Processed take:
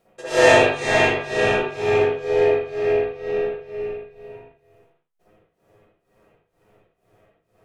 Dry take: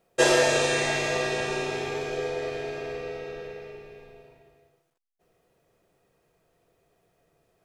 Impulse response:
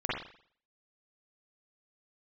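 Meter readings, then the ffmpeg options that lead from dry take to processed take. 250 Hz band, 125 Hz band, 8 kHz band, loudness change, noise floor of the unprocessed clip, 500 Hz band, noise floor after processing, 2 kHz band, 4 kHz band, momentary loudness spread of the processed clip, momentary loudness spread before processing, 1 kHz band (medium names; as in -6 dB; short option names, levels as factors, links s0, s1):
+5.5 dB, +6.0 dB, no reading, +7.0 dB, -73 dBFS, +8.5 dB, -72 dBFS, +6.5 dB, +2.0 dB, 16 LU, 19 LU, +8.0 dB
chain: -filter_complex "[0:a]tremolo=f=2.1:d=0.96[s0];[1:a]atrim=start_sample=2205,afade=t=out:st=0.21:d=0.01,atrim=end_sample=9702,asetrate=37044,aresample=44100[s1];[s0][s1]afir=irnorm=-1:irlink=0,volume=1.41"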